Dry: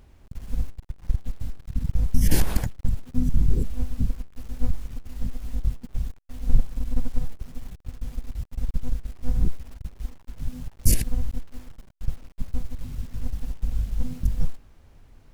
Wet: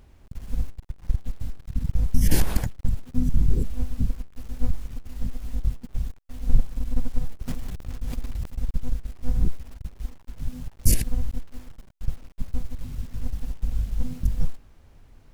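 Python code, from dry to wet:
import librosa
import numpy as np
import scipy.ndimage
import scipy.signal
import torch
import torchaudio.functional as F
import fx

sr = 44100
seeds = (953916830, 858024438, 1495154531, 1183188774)

y = fx.sustainer(x, sr, db_per_s=35.0, at=(7.47, 8.55), fade=0.02)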